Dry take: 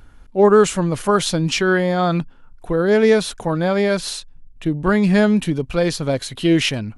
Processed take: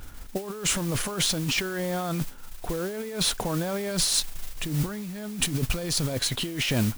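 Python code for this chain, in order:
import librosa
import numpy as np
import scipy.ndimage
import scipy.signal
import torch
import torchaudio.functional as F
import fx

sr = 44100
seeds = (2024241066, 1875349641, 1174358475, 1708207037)

y = fx.bass_treble(x, sr, bass_db=4, treble_db=8, at=(3.91, 6.13))
y = fx.over_compress(y, sr, threshold_db=-25.0, ratio=-1.0)
y = fx.mod_noise(y, sr, seeds[0], snr_db=13)
y = F.gain(torch.from_numpy(y), -4.0).numpy()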